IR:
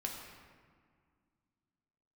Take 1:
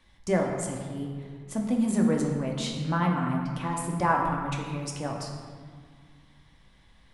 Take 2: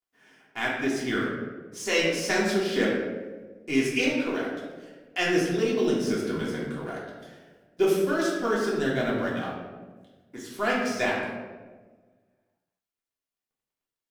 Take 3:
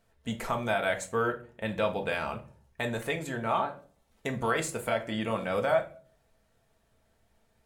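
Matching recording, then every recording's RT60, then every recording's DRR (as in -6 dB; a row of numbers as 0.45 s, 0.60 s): 1; 1.9 s, 1.4 s, 0.45 s; -0.5 dB, -6.0 dB, 3.0 dB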